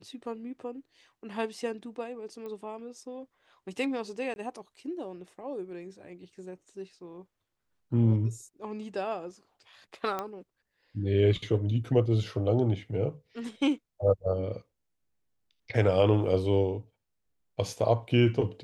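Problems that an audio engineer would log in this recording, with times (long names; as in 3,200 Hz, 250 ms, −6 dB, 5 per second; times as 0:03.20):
0:02.46: click −30 dBFS
0:04.34–0:04.36: drop-out 21 ms
0:10.19: click −19 dBFS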